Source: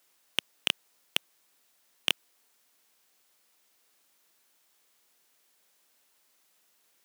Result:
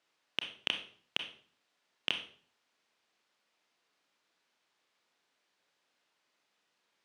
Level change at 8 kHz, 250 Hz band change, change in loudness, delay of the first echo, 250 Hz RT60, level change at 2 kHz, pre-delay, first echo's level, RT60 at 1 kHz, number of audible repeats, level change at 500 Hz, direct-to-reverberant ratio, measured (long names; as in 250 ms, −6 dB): −15.0 dB, −3.5 dB, −5.0 dB, no echo audible, 0.60 s, −4.0 dB, 27 ms, no echo audible, 0.45 s, no echo audible, −3.5 dB, 5.0 dB